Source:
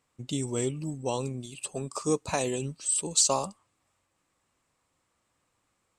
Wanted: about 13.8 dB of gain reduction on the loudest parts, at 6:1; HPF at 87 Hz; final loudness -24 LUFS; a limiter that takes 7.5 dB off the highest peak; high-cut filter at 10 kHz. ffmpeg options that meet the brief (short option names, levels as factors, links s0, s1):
-af "highpass=87,lowpass=10000,acompressor=threshold=0.0178:ratio=6,volume=6.68,alimiter=limit=0.237:level=0:latency=1"